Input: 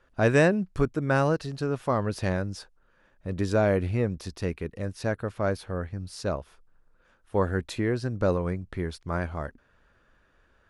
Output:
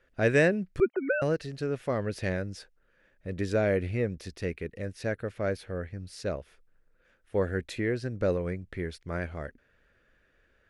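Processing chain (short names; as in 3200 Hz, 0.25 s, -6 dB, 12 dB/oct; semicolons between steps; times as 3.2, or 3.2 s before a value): 0.8–1.22 sine-wave speech; ten-band EQ 500 Hz +5 dB, 1000 Hz -9 dB, 2000 Hz +8 dB; gain -4.5 dB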